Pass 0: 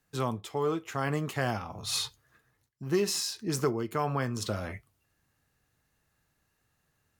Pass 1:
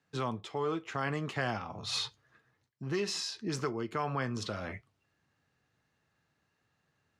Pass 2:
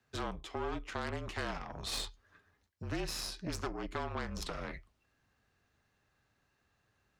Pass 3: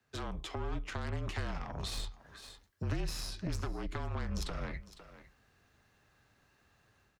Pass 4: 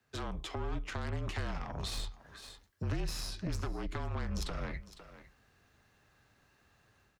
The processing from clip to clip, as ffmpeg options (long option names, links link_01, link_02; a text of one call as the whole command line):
ffmpeg -i in.wav -filter_complex "[0:a]highpass=100,acrossover=split=1100[link_01][link_02];[link_01]alimiter=level_in=2dB:limit=-24dB:level=0:latency=1:release=239,volume=-2dB[link_03];[link_02]lowpass=4900[link_04];[link_03][link_04]amix=inputs=2:normalize=0" out.wav
ffmpeg -i in.wav -af "aeval=exprs='0.119*(cos(1*acos(clip(val(0)/0.119,-1,1)))-cos(1*PI/2))+0.0211*(cos(6*acos(clip(val(0)/0.119,-1,1)))-cos(6*PI/2))+0.00335*(cos(7*acos(clip(val(0)/0.119,-1,1)))-cos(7*PI/2))':channel_layout=same,acompressor=threshold=-42dB:ratio=2,afreqshift=-39,volume=3dB" out.wav
ffmpeg -i in.wav -filter_complex "[0:a]dynaudnorm=framelen=190:gausssize=3:maxgain=8dB,aecho=1:1:505:0.0841,acrossover=split=160[link_01][link_02];[link_02]acompressor=threshold=-38dB:ratio=10[link_03];[link_01][link_03]amix=inputs=2:normalize=0,volume=-1dB" out.wav
ffmpeg -i in.wav -af "asoftclip=type=tanh:threshold=-25dB,volume=1dB" out.wav